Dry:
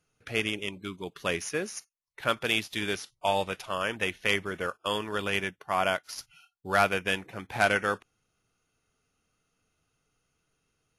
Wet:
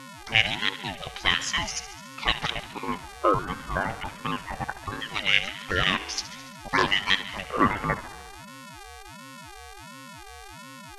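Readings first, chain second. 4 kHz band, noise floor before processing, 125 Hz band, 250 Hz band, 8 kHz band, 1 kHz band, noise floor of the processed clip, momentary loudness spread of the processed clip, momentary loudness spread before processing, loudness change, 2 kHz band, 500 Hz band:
+7.5 dB, −78 dBFS, +5.0 dB, +3.0 dB, +4.0 dB, +2.5 dB, −44 dBFS, 20 LU, 12 LU, +3.5 dB, +3.5 dB, −2.5 dB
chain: time-frequency cells dropped at random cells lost 29%
high-pass filter 130 Hz
gain on a spectral selection 0:04.89–0:05.66, 210–1,600 Hz −11 dB
parametric band 2,500 Hz +10.5 dB 0.55 octaves
in parallel at −2 dB: downward compressor, threshold −31 dBFS, peak gain reduction 14.5 dB
on the sum: auto-filter low-pass square 0.2 Hz 990–5,500 Hz
hum with harmonics 400 Hz, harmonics 30, −42 dBFS −5 dB per octave
on a send: feedback echo with a high-pass in the loop 71 ms, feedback 70%, high-pass 180 Hz, level −15 dB
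on the sum: ring modulator whose carrier an LFO sweeps 500 Hz, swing 35%, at 1.4 Hz
level +1.5 dB

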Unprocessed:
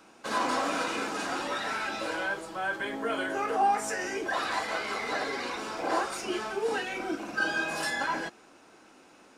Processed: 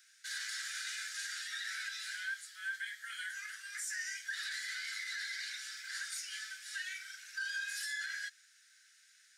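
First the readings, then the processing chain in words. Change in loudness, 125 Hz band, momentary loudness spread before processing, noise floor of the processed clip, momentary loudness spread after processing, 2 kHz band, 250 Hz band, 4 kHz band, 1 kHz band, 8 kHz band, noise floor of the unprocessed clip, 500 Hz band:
−9.0 dB, below −40 dB, 5 LU, −65 dBFS, 5 LU, −6.5 dB, below −40 dB, −3.5 dB, −28.0 dB, −1.0 dB, −56 dBFS, below −40 dB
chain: Butterworth high-pass 1,600 Hz 72 dB per octave
parametric band 2,600 Hz −13.5 dB 0.49 octaves
brickwall limiter −32 dBFS, peak gain reduction 9 dB
level +1 dB

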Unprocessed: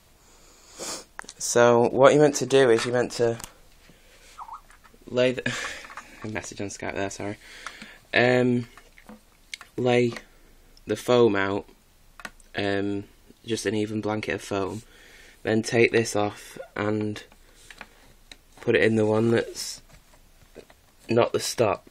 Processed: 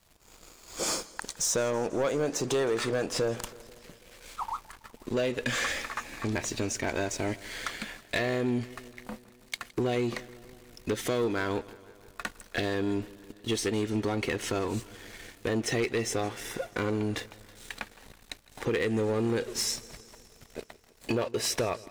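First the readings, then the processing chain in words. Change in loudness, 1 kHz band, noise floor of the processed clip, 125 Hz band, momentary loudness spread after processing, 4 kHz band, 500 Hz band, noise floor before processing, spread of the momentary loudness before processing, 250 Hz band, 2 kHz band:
−7.0 dB, −7.0 dB, −58 dBFS, −4.5 dB, 17 LU, −2.0 dB, −8.0 dB, −57 dBFS, 21 LU, −5.5 dB, −5.5 dB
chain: downward compressor 5 to 1, threshold −29 dBFS, peak gain reduction 17.5 dB
leveller curve on the samples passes 3
feedback echo with a swinging delay time 163 ms, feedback 68%, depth 66 cents, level −21 dB
level −6 dB

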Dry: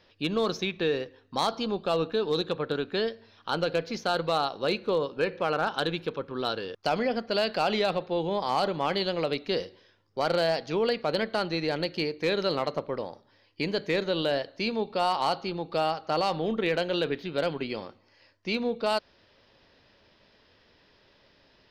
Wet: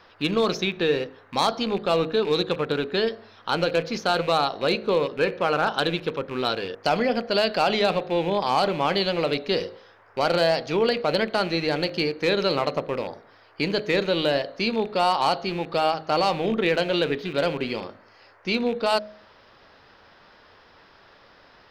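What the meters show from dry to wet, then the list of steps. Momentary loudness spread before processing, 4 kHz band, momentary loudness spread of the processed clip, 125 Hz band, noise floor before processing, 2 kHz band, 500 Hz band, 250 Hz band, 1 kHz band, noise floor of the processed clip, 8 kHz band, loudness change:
6 LU, +5.0 dB, 6 LU, +4.5 dB, −63 dBFS, +5.5 dB, +4.5 dB, +4.5 dB, +5.0 dB, −54 dBFS, can't be measured, +4.5 dB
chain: loose part that buzzes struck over −41 dBFS, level −34 dBFS
noise in a band 390–1,800 Hz −61 dBFS
hum removal 52.78 Hz, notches 14
level +5 dB

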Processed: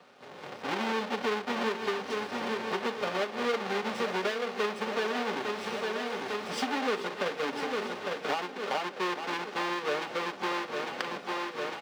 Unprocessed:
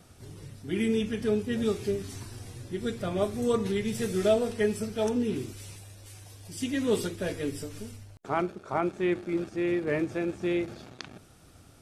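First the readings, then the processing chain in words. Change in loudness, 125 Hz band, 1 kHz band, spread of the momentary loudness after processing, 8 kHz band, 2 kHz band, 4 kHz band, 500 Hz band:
−2.5 dB, −12.5 dB, +6.5 dB, 4 LU, −4.0 dB, +6.5 dB, +5.5 dB, −3.0 dB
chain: each half-wave held at its own peak
three-way crossover with the lows and the highs turned down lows −13 dB, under 410 Hz, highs −22 dB, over 4,900 Hz
on a send: repeating echo 852 ms, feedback 53%, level −11.5 dB
on the sum: downward compressor 5 to 1, threshold −41 dBFS, peak gain reduction 21.5 dB
notch comb filter 330 Hz
automatic gain control gain up to 11 dB
high-pass filter 190 Hz 24 dB per octave
level +1.5 dB

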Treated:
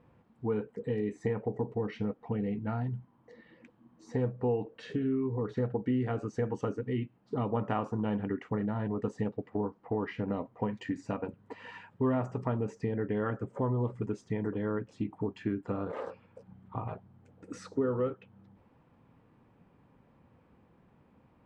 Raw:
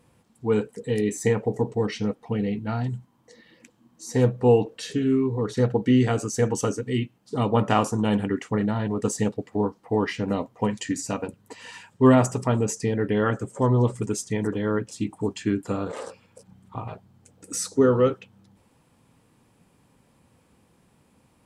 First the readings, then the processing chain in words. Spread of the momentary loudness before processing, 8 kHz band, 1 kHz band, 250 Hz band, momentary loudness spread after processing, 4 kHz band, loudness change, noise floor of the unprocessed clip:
13 LU, below −25 dB, −10.0 dB, −9.0 dB, 9 LU, −17.0 dB, −9.5 dB, −63 dBFS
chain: low-pass filter 1,900 Hz 12 dB per octave
downward compressor 2.5 to 1, threshold −30 dBFS, peak gain reduction 12.5 dB
level −1.5 dB

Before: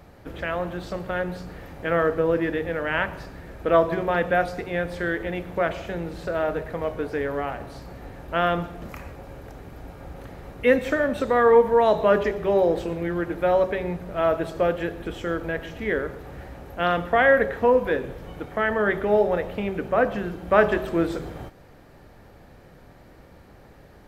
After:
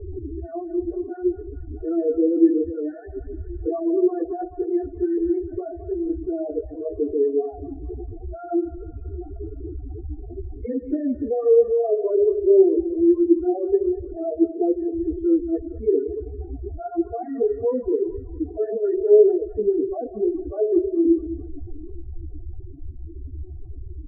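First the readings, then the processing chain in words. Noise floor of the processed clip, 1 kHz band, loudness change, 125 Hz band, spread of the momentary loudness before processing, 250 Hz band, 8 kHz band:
−38 dBFS, −12.0 dB, +1.5 dB, −2.5 dB, 21 LU, +7.0 dB, can't be measured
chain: linear delta modulator 32 kbit/s, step −25.5 dBFS
comb filter 2.8 ms, depth 99%
in parallel at −2.5 dB: compressor whose output falls as the input rises −20 dBFS, ratio −0.5
on the sum: spectral peaks only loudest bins 4
low-pass filter sweep 390 Hz → 190 Hz, 0:20.35–0:22.98
on a send: feedback echo with a band-pass in the loop 216 ms, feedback 62%, band-pass 1,600 Hz, level −11 dB
on the sum: string-ensemble chorus
level −3.5 dB

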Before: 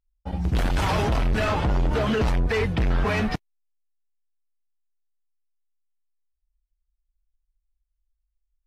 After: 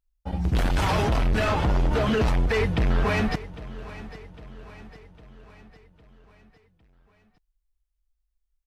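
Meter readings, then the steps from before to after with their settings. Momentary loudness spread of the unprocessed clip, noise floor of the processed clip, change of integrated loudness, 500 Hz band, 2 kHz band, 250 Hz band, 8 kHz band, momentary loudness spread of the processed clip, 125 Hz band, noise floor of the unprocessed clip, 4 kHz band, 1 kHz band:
5 LU, −76 dBFS, 0.0 dB, 0.0 dB, 0.0 dB, 0.0 dB, 0.0 dB, 16 LU, 0.0 dB, −80 dBFS, 0.0 dB, 0.0 dB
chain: repeating echo 805 ms, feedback 53%, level −17 dB

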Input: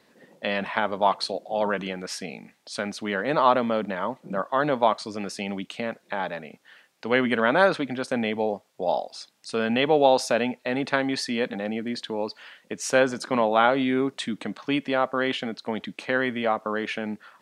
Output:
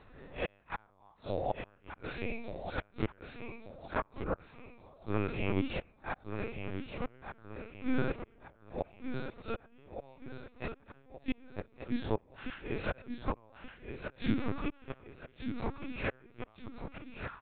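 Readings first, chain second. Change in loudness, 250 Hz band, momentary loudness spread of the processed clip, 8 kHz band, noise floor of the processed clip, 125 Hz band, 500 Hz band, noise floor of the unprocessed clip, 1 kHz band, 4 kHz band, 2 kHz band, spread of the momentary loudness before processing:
−14.5 dB, −11.0 dB, 15 LU, below −40 dB, −64 dBFS, −2.5 dB, −16.0 dB, −64 dBFS, −18.0 dB, −19.0 dB, −15.5 dB, 12 LU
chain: spectrum smeared in time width 110 ms
low-pass filter 1,800 Hz 6 dB per octave
low-shelf EQ 280 Hz −2.5 dB
comb filter 0.8 ms, depth 41%
shaped tremolo saw down 0.72 Hz, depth 40%
in parallel at −8.5 dB: asymmetric clip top −27.5 dBFS
on the sum: gate with flip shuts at −23 dBFS, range −39 dB
linear-phase brick-wall high-pass 200 Hz
on a send: repeating echo 1,177 ms, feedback 38%, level −7.5 dB
on the sum: linear-prediction vocoder at 8 kHz pitch kept
level +5.5 dB

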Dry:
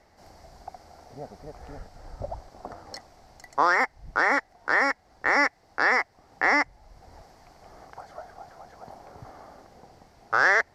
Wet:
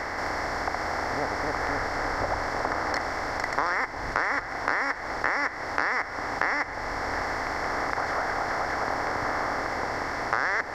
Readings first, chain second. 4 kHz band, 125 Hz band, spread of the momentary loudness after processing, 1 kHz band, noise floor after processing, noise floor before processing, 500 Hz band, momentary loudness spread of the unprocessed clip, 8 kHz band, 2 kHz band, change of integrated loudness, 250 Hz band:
+3.0 dB, can't be measured, 3 LU, +1.5 dB, −36 dBFS, −60 dBFS, +2.5 dB, 21 LU, +4.0 dB, −2.0 dB, −4.5 dB, +2.5 dB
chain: compressor on every frequency bin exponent 0.4
downward compressor 5 to 1, threshold −23 dBFS, peak gain reduction 11 dB
delay that swaps between a low-pass and a high-pass 361 ms, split 820 Hz, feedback 71%, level −11 dB

